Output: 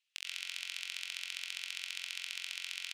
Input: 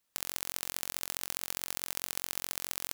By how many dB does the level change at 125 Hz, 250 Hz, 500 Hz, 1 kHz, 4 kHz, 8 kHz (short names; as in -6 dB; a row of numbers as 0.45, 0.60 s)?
under -40 dB, under -35 dB, under -25 dB, -13.5 dB, +2.0 dB, -9.5 dB